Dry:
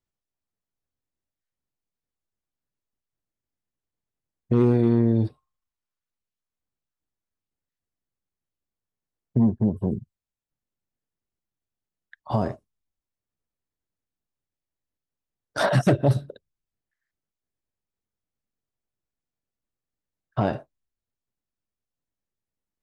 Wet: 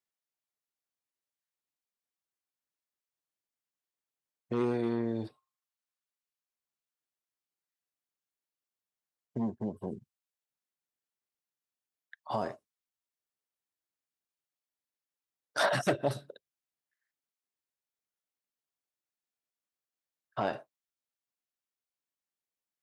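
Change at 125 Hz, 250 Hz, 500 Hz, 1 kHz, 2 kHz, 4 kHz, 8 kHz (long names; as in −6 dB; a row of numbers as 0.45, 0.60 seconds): −17.5, −12.5, −7.5, −4.5, −3.0, −2.0, −2.0 decibels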